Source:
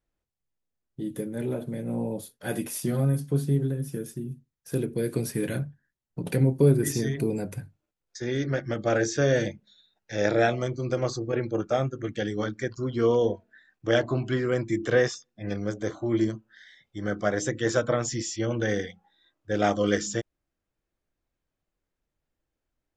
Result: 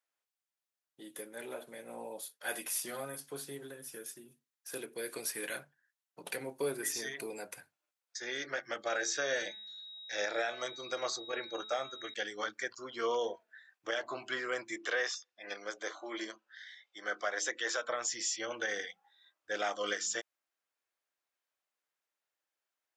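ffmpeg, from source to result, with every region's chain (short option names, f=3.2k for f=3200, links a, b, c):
-filter_complex "[0:a]asettb=1/sr,asplit=3[a][b][c];[a]atrim=end=8.874[d];[b]atrim=start=8.87:end=12.14,asetpts=PTS-STARTPTS,afade=t=in:d=0.004:c=qsin,afade=t=out:st=3.266:d=0.004:c=qsin,bandreject=f=215.9:t=h:w=4,bandreject=f=431.8:t=h:w=4,bandreject=f=647.7:t=h:w=4,bandreject=f=863.6:t=h:w=4,bandreject=f=1.0795k:t=h:w=4,bandreject=f=1.2954k:t=h:w=4,bandreject=f=1.5113k:t=h:w=4,bandreject=f=1.7272k:t=h:w=4,bandreject=f=1.9431k:t=h:w=4,bandreject=f=2.159k:t=h:w=4,bandreject=f=2.3749k:t=h:w=4,bandreject=f=2.5908k:t=h:w=4,bandreject=f=2.8067k:t=h:w=4,bandreject=f=3.0226k:t=h:w=4,bandreject=f=3.2385k:t=h:w=4,bandreject=f=3.4544k:t=h:w=4,bandreject=f=3.6703k:t=h:w=4,bandreject=f=3.8862k:t=h:w=4,aeval=exprs='val(0)+0.00501*sin(2*PI*3800*n/s)':c=same[e];[c]atrim=start=12.136[f];[d][e]acrossfade=d=0.004:c1=hsin:c2=qsin[g];[g][f]acrossfade=d=0.004:c1=qsin:c2=hsin,asettb=1/sr,asplit=3[h][i][j];[h]atrim=end=14.764[k];[i]atrim=start=14.76:end=17.89,asetpts=PTS-STARTPTS,afade=t=in:d=0.004:c=qsin,afade=t=out:st=3.126:d=0.004:c=qsin,highpass=270,lowpass=5.3k,highshelf=f=3.7k:g=5.5[l];[j]atrim=start=17.886[m];[k][l]acrossfade=d=0.004:c1=hsin:c2=qsin[n];[n][m]acrossfade=d=0.004:c1=qsin:c2=hsin,highpass=870,alimiter=limit=-23dB:level=0:latency=1:release=188"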